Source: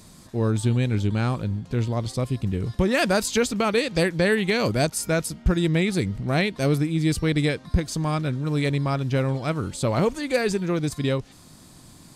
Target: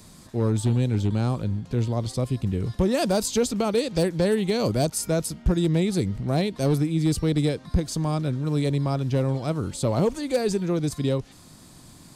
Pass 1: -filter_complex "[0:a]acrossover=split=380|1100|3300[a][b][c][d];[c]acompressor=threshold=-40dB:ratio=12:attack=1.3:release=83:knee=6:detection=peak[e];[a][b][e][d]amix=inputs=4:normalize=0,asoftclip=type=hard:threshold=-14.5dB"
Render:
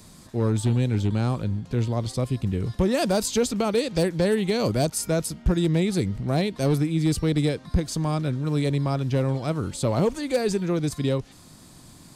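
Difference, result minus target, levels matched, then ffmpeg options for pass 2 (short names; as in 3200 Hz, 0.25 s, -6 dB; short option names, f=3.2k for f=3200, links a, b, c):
compressor: peak gain reduction -6 dB
-filter_complex "[0:a]acrossover=split=380|1100|3300[a][b][c][d];[c]acompressor=threshold=-46.5dB:ratio=12:attack=1.3:release=83:knee=6:detection=peak[e];[a][b][e][d]amix=inputs=4:normalize=0,asoftclip=type=hard:threshold=-14.5dB"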